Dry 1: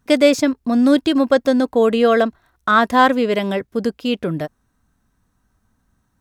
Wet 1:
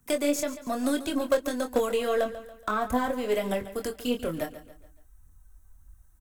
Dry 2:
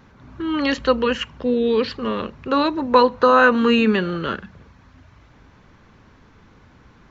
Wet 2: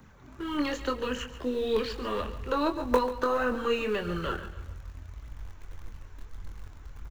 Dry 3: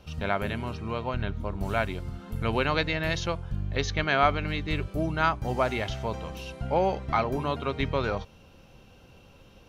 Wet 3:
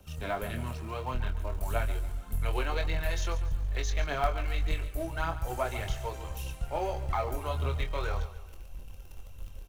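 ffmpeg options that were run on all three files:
ffmpeg -i in.wav -filter_complex "[0:a]asubboost=boost=10.5:cutoff=59,acrossover=split=390|960[link_01][link_02][link_03];[link_01]acompressor=threshold=-28dB:ratio=4[link_04];[link_02]acompressor=threshold=-25dB:ratio=4[link_05];[link_03]acompressor=threshold=-31dB:ratio=4[link_06];[link_04][link_05][link_06]amix=inputs=3:normalize=0,acrossover=split=170|2400[link_07][link_08][link_09];[link_09]aexciter=amount=4.7:drive=4.7:freq=6700[link_10];[link_07][link_08][link_10]amix=inputs=3:normalize=0,aphaser=in_gain=1:out_gain=1:delay=3.4:decay=0.48:speed=1.7:type=triangular,asplit=2[link_11][link_12];[link_12]acrusher=bits=3:dc=4:mix=0:aa=0.000001,volume=-12dB[link_13];[link_11][link_13]amix=inputs=2:normalize=0,asplit=2[link_14][link_15];[link_15]adelay=24,volume=-7dB[link_16];[link_14][link_16]amix=inputs=2:normalize=0,aecho=1:1:141|282|423|564:0.2|0.0878|0.0386|0.017,volume=-7.5dB" out.wav

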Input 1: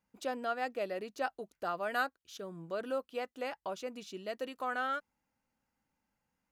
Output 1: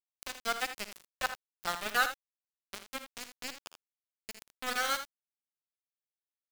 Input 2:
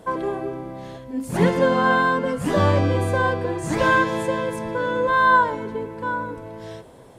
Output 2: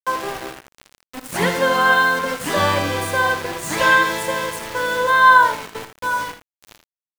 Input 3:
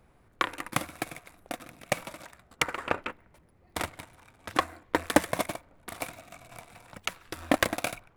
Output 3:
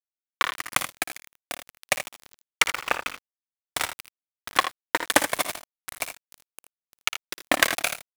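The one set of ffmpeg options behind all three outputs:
ffmpeg -i in.wav -af "tiltshelf=frequency=680:gain=-8,aeval=exprs='val(0)*gte(abs(val(0)),0.0422)':channel_layout=same,aecho=1:1:56|80:0.224|0.282,volume=1dB" out.wav

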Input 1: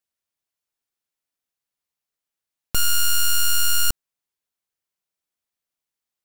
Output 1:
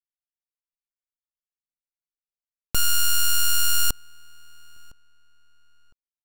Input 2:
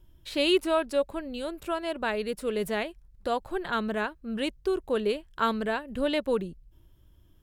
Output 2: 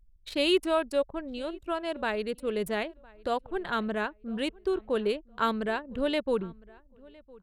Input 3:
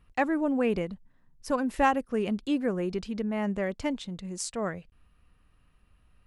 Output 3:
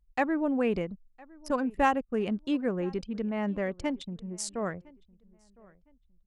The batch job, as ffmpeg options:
ffmpeg -i in.wav -filter_complex "[0:a]anlmdn=0.398,asplit=2[link_01][link_02];[link_02]adelay=1009,lowpass=frequency=2600:poles=1,volume=-24dB,asplit=2[link_03][link_04];[link_04]adelay=1009,lowpass=frequency=2600:poles=1,volume=0.29[link_05];[link_01][link_03][link_05]amix=inputs=3:normalize=0,volume=-1dB" out.wav

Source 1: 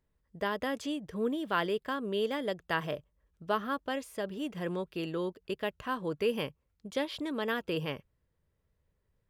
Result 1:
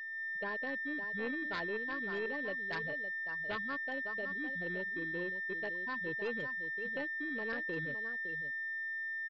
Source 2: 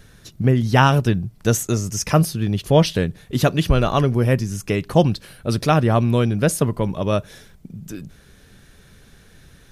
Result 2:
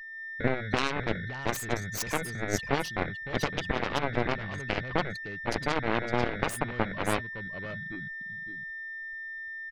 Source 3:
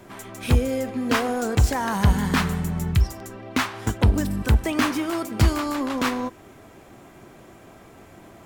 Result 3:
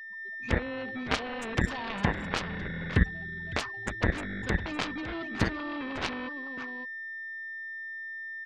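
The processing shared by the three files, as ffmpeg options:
ffmpeg -i in.wav -filter_complex "[0:a]afftfilt=real='re*gte(hypot(re,im),0.0708)':imag='im*gte(hypot(re,im),0.0708)':win_size=1024:overlap=0.75,equalizer=frequency=12000:width_type=o:width=1.8:gain=6,alimiter=limit=-11dB:level=0:latency=1:release=373,asplit=2[link_01][link_02];[link_02]aecho=0:1:560:0.316[link_03];[link_01][link_03]amix=inputs=2:normalize=0,aeval=exprs='val(0)+0.0316*sin(2*PI*1800*n/s)':channel_layout=same,aeval=exprs='0.398*(cos(1*acos(clip(val(0)/0.398,-1,1)))-cos(1*PI/2))+0.141*(cos(3*acos(clip(val(0)/0.398,-1,1)))-cos(3*PI/2))+0.02*(cos(7*acos(clip(val(0)/0.398,-1,1)))-cos(7*PI/2))+0.00224*(cos(8*acos(clip(val(0)/0.398,-1,1)))-cos(8*PI/2))':channel_layout=same,dynaudnorm=framelen=120:gausssize=3:maxgain=4dB,volume=-2.5dB" out.wav

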